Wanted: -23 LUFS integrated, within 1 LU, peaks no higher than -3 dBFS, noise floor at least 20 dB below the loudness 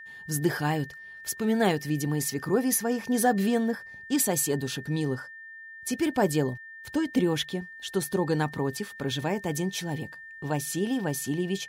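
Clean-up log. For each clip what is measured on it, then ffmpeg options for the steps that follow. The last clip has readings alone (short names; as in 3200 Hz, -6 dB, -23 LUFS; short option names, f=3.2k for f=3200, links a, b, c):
steady tone 1800 Hz; tone level -42 dBFS; loudness -28.0 LUFS; peak -10.5 dBFS; loudness target -23.0 LUFS
-> -af "bandreject=f=1.8k:w=30"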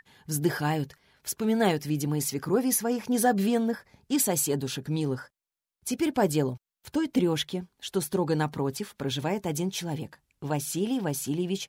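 steady tone none; loudness -28.5 LUFS; peak -11.0 dBFS; loudness target -23.0 LUFS
-> -af "volume=5.5dB"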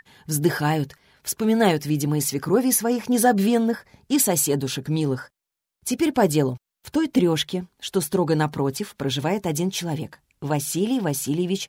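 loudness -23.0 LUFS; peak -5.5 dBFS; noise floor -85 dBFS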